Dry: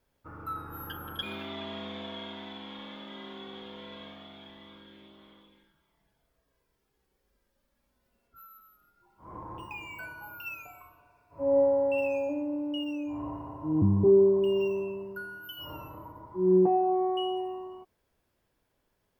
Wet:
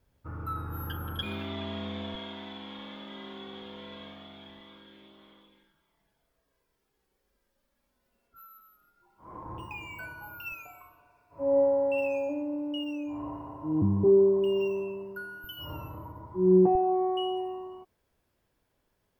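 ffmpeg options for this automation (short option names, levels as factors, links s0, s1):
-af "asetnsamples=n=441:p=0,asendcmd='2.15 equalizer g 2.5;4.6 equalizer g -4.5;9.46 equalizer g 5.5;10.52 equalizer g -3;15.44 equalizer g 8;16.75 equalizer g 1.5',equalizer=f=74:t=o:w=2.6:g=11.5"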